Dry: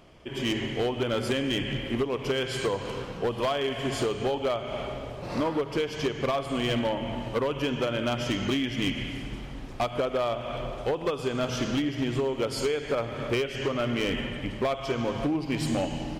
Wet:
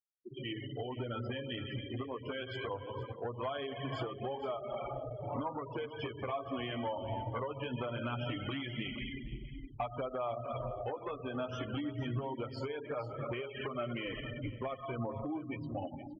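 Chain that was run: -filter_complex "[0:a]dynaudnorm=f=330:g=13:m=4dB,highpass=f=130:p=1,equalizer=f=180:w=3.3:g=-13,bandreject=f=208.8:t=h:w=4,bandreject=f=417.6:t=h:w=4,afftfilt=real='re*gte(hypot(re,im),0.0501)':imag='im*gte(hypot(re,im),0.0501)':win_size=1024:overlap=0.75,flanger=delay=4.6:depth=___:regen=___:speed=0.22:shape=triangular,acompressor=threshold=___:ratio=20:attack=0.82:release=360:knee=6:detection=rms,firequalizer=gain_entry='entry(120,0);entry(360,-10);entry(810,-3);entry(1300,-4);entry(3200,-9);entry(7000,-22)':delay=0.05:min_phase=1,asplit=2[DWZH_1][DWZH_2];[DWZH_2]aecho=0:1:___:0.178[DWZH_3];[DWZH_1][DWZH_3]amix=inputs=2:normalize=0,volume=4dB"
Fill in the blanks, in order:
6.9, -8, -28dB, 468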